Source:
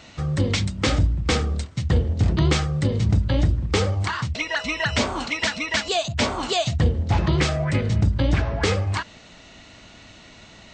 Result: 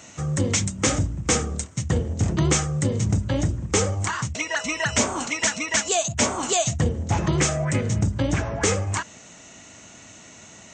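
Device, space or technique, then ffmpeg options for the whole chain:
budget condenser microphone: -af "highpass=96,highshelf=f=5400:t=q:w=3:g=7"

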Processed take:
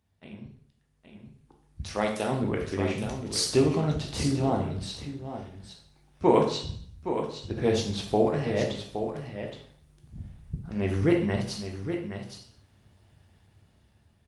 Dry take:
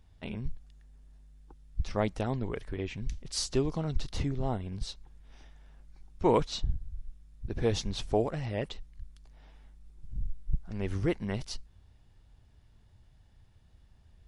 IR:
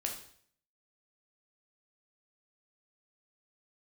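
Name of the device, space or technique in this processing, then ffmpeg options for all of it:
far-field microphone of a smart speaker: -filter_complex "[0:a]asplit=3[s0][s1][s2];[s0]afade=t=out:st=1.83:d=0.02[s3];[s1]aemphasis=mode=production:type=bsi,afade=t=in:st=1.83:d=0.02,afade=t=out:st=2.3:d=0.02[s4];[s2]afade=t=in:st=2.3:d=0.02[s5];[s3][s4][s5]amix=inputs=3:normalize=0,asettb=1/sr,asplit=3[s6][s7][s8];[s6]atrim=end=6.304[s9];[s7]atrim=start=6.3:end=6.97,asetpts=PTS-STARTPTS,afade=t=in:d=0.004:c=qsin,afade=t=out:st=0.666:d=0.004:c=qsin,bandreject=f=60:t=h:w=6,bandreject=f=120:t=h:w=6,bandreject=f=180:t=h:w=6,bandreject=f=240:t=h:w=6,bandreject=f=300:t=h:w=6,bandreject=f=360:t=h:w=6,bandreject=f=420:t=h:w=6,bandreject=f=480:t=h:w=6,bandreject=f=540:t=h:w=6,bandreject=f=600:t=h:w=6[s10];[s8]atrim=start=6.966[s11];[s9][s10]acrossfade=d=0.004:c1=hsin:c2=qsin[s12];[s12][s11]acrossfade=d=0.004:c1=qsin:c2=hsin,aecho=1:1:818:0.355[s13];[1:a]atrim=start_sample=2205[s14];[s13][s14]afir=irnorm=-1:irlink=0,highpass=110,dynaudnorm=f=320:g=11:m=5.62,volume=0.473" -ar 48000 -c:a libopus -b:a 32k

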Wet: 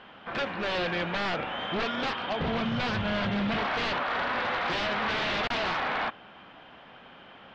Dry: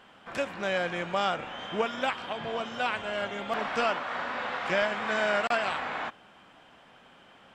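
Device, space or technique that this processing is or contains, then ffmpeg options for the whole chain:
synthesiser wavefolder: -filter_complex "[0:a]asettb=1/sr,asplit=3[s0][s1][s2];[s0]atrim=end=2.404[s3];[s1]atrim=start=2.4:end=3.58,asetpts=PTS-STARTPTS,afade=t=in:d=0.004:c=qsin,afade=t=out:st=1.176:d=0.004:c=qsin,lowshelf=f=240:t=q:w=1.5:g=14[s4];[s2]atrim=start=3.576[s5];[s3][s4]acrossfade=d=0.004:c1=hsin:c2=qsin[s6];[s6][s5]acrossfade=d=0.004:c1=qsin:c2=hsin,aeval=exprs='0.0355*(abs(mod(val(0)/0.0355+3,4)-2)-1)':c=same,lowpass=f=4200:w=0.5412,lowpass=f=4200:w=1.3066,volume=1.88"

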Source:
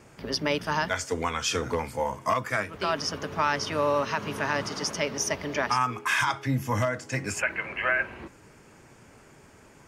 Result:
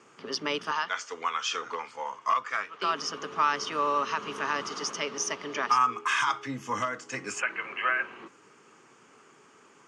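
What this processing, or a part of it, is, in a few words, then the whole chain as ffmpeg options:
car door speaker: -filter_complex "[0:a]highpass=230,asettb=1/sr,asplit=3[s0][s1][s2];[s0]atrim=end=0.714[s3];[s1]atrim=start=0.71:end=2.82,asetpts=PTS-STARTPTS,afade=t=in:d=0.004:c=qsin,afade=t=out:st=2.106:d=0.004:c=qsin,acrossover=split=590 6600:gain=0.251 1 0.112[s4][s5][s6];[s4][s5][s6]amix=inputs=3:normalize=0[s7];[s2]atrim=start=2.816[s8];[s3][s7]acrossfade=d=0.004:c1=hsin:c2=qsin[s9];[s9][s8]acrossfade=d=0.004:c1=qsin:c2=hsin,highpass=85,equalizer=f=420:t=q:w=4:g=4,equalizer=f=610:t=q:w=4:g=-6,equalizer=f=1200:t=q:w=4:g=10,equalizer=f=3000:t=q:w=4:g=6,equalizer=f=6400:t=q:w=4:g=4,lowpass=f=8700:w=0.5412,lowpass=f=8700:w=1.3066,volume=0.596"

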